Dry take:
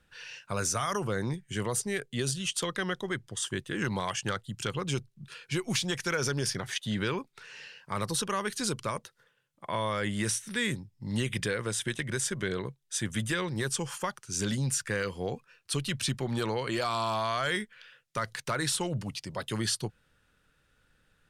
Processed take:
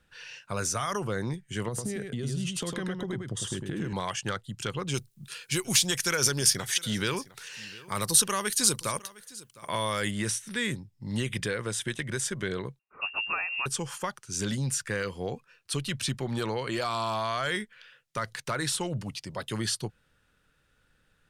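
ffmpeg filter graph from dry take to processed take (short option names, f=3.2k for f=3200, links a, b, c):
-filter_complex "[0:a]asettb=1/sr,asplit=3[a][b][c];[a]atrim=end=1.684[d];[b]atrim=start=1.68:end=3.93,asetpts=PTS-STARTPTS,afade=t=in:d=0.004:c=qsin,afade=t=out:st=2.246:d=0.004:c=qsin,equalizer=f=150:w=0.31:g=11.5,acompressor=threshold=-29dB:ratio=16:attack=3.2:release=140:knee=1:detection=peak,aecho=1:1:103:0.596,atrim=end_sample=99225[e];[c]atrim=start=3.926[f];[d][e]acrossfade=d=0.004:c1=hsin:c2=qsin[g];[g][f]acrossfade=d=0.004:c1=qsin:c2=hsin,asettb=1/sr,asplit=3[h][i][j];[h]atrim=end=4.944[k];[i]atrim=start=4.94:end=10.11,asetpts=PTS-STARTPTS,afade=t=in:d=0.004:c=qsin,afade=t=out:st=5.166:d=0.004:c=qsin,aemphasis=mode=production:type=75kf,aecho=1:1:708:0.0944,atrim=end_sample=227997[l];[j]atrim=start=10.106[m];[k][l]acrossfade=d=0.004:c1=hsin:c2=qsin[n];[n][m]acrossfade=d=0.004:c1=qsin:c2=hsin,asettb=1/sr,asplit=3[o][p][q];[o]atrim=end=12.794[r];[p]atrim=start=12.79:end=13.66,asetpts=PTS-STARTPTS,afade=t=in:d=0.004:c=qsin,afade=t=out:st=0.866:d=0.004:c=qsin,highpass=46,lowpass=f=2.5k:t=q:w=0.5098,lowpass=f=2.5k:t=q:w=0.6013,lowpass=f=2.5k:t=q:w=0.9,lowpass=f=2.5k:t=q:w=2.563,afreqshift=-2900[s];[q]atrim=start=13.656[t];[r][s]acrossfade=d=0.004:c1=hsin:c2=qsin[u];[u][t]acrossfade=d=0.004:c1=qsin:c2=hsin"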